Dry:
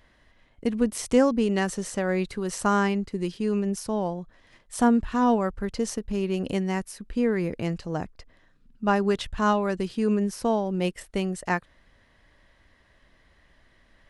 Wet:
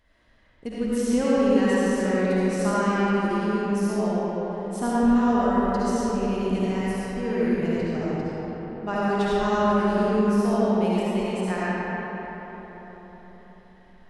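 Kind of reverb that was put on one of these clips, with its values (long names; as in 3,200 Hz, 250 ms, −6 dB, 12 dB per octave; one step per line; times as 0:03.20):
comb and all-pass reverb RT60 4.6 s, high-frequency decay 0.5×, pre-delay 30 ms, DRR −9.5 dB
level −8 dB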